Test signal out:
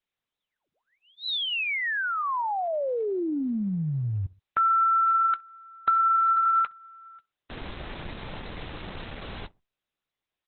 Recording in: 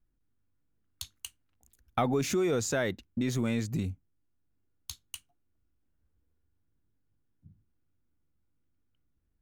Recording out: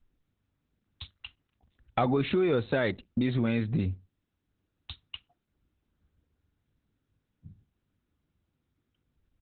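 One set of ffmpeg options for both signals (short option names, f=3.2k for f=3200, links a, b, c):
-filter_complex "[0:a]asplit=2[a][b];[b]adelay=64,lowpass=f=900:p=1,volume=-23dB,asplit=2[c][d];[d]adelay=64,lowpass=f=900:p=1,volume=0.34[e];[a][c][e]amix=inputs=3:normalize=0,asplit=2[f][g];[g]acompressor=threshold=-34dB:ratio=12,volume=1dB[h];[f][h]amix=inputs=2:normalize=0" -ar 48000 -c:a libopus -b:a 8k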